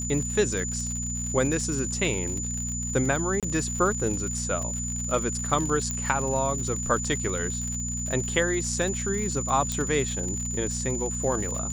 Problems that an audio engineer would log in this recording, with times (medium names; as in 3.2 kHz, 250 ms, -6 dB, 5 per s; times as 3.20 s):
crackle 84 per s -31 dBFS
hum 60 Hz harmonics 4 -33 dBFS
whine 7 kHz -31 dBFS
3.40–3.43 s: dropout 27 ms
5.91 s: pop -15 dBFS
9.72 s: pop -14 dBFS